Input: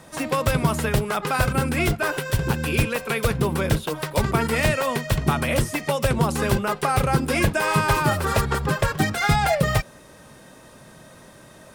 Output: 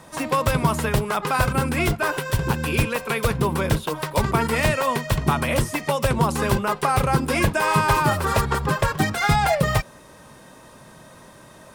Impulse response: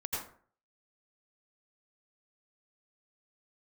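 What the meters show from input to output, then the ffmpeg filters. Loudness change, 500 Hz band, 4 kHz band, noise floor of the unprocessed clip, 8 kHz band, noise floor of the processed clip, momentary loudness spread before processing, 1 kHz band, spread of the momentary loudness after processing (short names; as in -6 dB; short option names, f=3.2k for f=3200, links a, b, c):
+0.5 dB, 0.0 dB, 0.0 dB, -47 dBFS, 0.0 dB, -47 dBFS, 4 LU, +2.5 dB, 5 LU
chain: -af "equalizer=f=1k:t=o:w=0.37:g=5.5"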